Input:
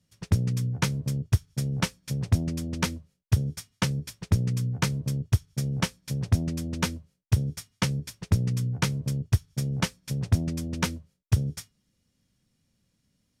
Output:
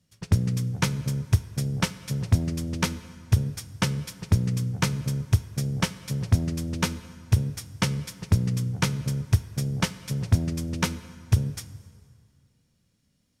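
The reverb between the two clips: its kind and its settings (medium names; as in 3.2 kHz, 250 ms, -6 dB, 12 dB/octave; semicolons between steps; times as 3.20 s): plate-style reverb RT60 2.2 s, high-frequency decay 0.75×, DRR 14 dB; trim +1.5 dB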